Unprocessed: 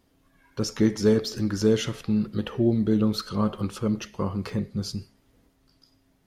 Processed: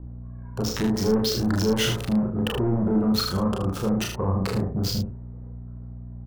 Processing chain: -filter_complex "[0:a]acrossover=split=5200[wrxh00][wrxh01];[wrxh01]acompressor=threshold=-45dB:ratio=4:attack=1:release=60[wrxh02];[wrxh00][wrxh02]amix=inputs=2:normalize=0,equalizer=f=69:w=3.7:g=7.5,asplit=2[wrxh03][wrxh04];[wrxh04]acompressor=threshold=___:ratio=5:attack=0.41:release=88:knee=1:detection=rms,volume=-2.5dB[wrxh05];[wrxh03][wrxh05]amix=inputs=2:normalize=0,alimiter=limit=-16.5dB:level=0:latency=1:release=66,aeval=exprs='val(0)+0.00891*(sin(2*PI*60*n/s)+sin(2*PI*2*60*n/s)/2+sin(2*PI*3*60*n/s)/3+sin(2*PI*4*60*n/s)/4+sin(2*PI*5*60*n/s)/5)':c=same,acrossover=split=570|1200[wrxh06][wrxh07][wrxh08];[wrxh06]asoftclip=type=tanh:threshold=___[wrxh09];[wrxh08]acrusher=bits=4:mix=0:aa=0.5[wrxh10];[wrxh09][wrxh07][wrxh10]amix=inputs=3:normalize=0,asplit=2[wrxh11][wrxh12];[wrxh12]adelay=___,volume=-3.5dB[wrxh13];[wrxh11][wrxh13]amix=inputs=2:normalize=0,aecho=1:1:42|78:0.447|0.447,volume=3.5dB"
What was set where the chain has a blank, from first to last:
-31dB, -26dB, 32